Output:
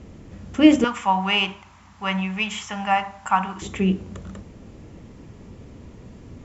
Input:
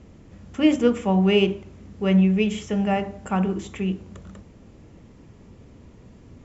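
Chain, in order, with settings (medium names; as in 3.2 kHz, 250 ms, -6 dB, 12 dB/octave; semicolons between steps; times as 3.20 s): 0.84–3.62 s: resonant low shelf 650 Hz -13 dB, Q 3; trim +5 dB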